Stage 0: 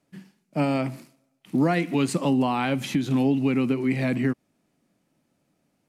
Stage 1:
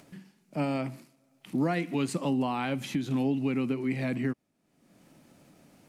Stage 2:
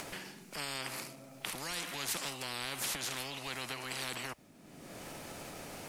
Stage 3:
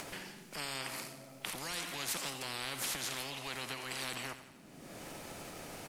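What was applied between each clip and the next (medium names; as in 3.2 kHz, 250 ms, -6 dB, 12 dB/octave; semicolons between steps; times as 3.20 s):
upward compressor, threshold -35 dBFS; trim -6 dB
spectrum-flattening compressor 10:1; trim +1 dB
feedback delay 88 ms, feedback 58%, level -12.5 dB; trim -1 dB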